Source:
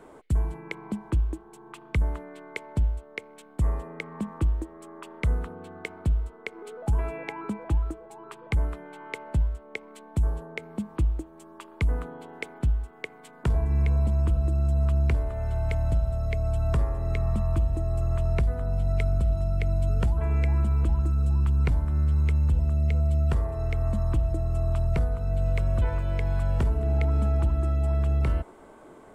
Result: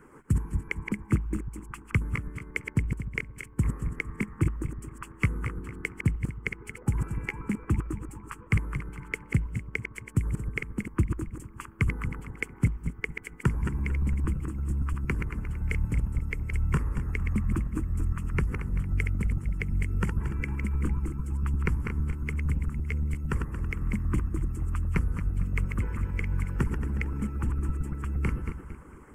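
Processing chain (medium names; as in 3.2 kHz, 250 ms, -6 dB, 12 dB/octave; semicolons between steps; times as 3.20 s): backward echo that repeats 114 ms, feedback 60%, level -5.5 dB; static phaser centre 1.6 kHz, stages 4; harmonic-percussive split harmonic -16 dB; trim +6 dB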